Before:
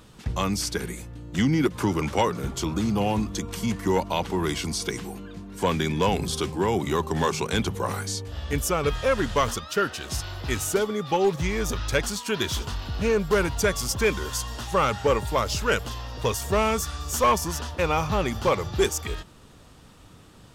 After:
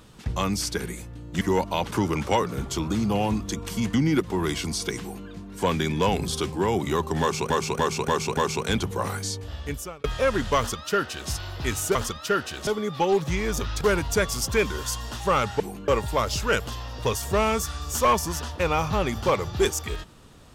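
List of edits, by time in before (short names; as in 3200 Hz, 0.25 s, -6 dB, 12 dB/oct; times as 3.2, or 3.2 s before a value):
1.41–1.77 swap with 3.8–4.3
5.01–5.29 copy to 15.07
7.21–7.5 loop, 5 plays
8.28–8.88 fade out
9.42–10.14 copy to 10.79
11.93–13.28 cut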